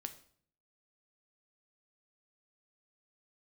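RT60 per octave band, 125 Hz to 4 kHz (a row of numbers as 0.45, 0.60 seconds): 0.85, 0.70, 0.60, 0.55, 0.50, 0.45 seconds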